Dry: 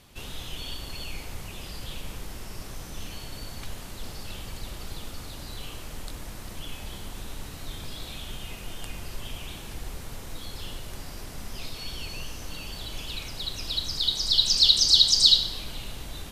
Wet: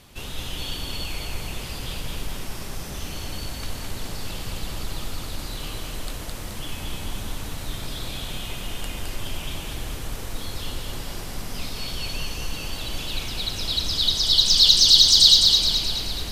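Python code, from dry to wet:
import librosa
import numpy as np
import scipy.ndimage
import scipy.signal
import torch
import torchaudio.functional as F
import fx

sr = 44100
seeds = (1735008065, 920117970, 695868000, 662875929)

p1 = 10.0 ** (-19.0 / 20.0) * np.tanh(x / 10.0 ** (-19.0 / 20.0))
p2 = x + F.gain(torch.from_numpy(p1), -7.0).numpy()
p3 = fx.echo_feedback(p2, sr, ms=213, feedback_pct=54, wet_db=-3.5)
y = F.gain(torch.from_numpy(p3), 1.0).numpy()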